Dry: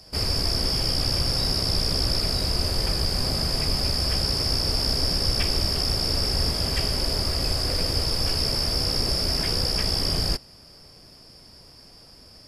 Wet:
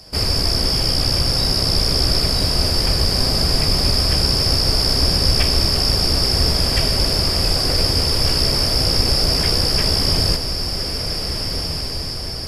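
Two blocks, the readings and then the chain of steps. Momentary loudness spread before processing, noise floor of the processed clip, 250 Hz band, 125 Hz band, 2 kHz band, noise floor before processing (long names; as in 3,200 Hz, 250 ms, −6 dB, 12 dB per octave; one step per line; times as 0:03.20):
2 LU, −25 dBFS, +7.0 dB, +7.5 dB, +7.0 dB, −49 dBFS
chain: feedback delay with all-pass diffusion 1,629 ms, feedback 55%, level −6.5 dB
level +6 dB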